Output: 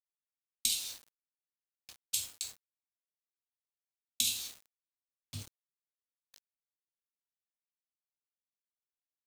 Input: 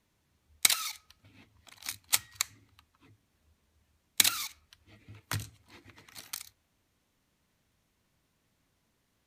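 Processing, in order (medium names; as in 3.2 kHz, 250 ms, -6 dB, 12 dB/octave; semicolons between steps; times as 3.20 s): level-controlled noise filter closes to 1.1 kHz, open at -30.5 dBFS; Chebyshev band-stop 250–2800 Hz, order 4; speakerphone echo 250 ms, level -24 dB; two-slope reverb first 0.43 s, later 2 s, from -18 dB, DRR -3 dB; small samples zeroed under -35.5 dBFS; trim -8.5 dB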